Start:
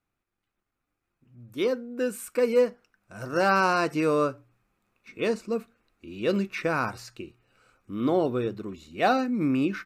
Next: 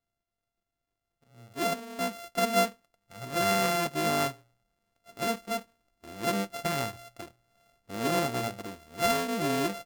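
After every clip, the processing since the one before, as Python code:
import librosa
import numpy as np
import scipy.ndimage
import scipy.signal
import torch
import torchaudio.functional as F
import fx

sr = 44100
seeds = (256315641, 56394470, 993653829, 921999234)

y = np.r_[np.sort(x[:len(x) // 64 * 64].reshape(-1, 64), axis=1).ravel(), x[len(x) // 64 * 64:]]
y = F.gain(torch.from_numpy(y), -4.0).numpy()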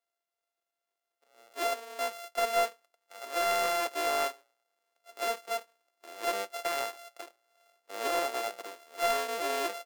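y = scipy.signal.sosfilt(scipy.signal.butter(4, 430.0, 'highpass', fs=sr, output='sos'), x)
y = 10.0 ** (-16.0 / 20.0) * np.tanh(y / 10.0 ** (-16.0 / 20.0))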